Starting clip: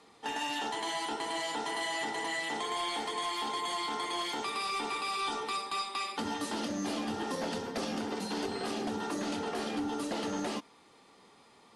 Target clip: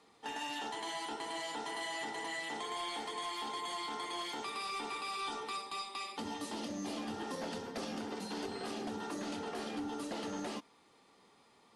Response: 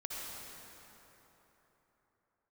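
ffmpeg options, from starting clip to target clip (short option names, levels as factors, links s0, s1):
-filter_complex "[0:a]asettb=1/sr,asplit=3[s0][s1][s2];[s0]atrim=end=5.624[s3];[s1]atrim=start=5.62:end=6.97,asetpts=PTS-STARTPTS,afade=t=in:d=0.004:c=qsin,afade=t=out:st=1.346:d=0.004:c=qsin,equalizer=f=1500:t=o:w=0.42:g=-6[s4];[s2]atrim=start=6.966[s5];[s3][s4]acrossfade=d=0.004:c1=hsin:c2=qsin[s6];[s6][s5]acrossfade=d=0.004:c1=qsin:c2=hsin,volume=0.531"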